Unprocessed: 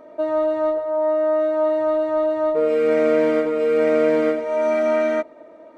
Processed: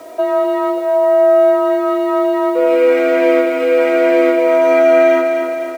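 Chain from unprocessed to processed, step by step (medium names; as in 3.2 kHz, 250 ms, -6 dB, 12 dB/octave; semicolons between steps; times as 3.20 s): steep high-pass 170 Hz 96 dB/octave; peaking EQ 2.5 kHz +5 dB 0.86 oct; in parallel at +1 dB: compression 8:1, threshold -26 dBFS, peak gain reduction 13 dB; on the sum: frequency shift +34 Hz; bit crusher 8-bit; on a send: feedback delay 255 ms, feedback 56%, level -6 dB; on the sum: trim +2.5 dB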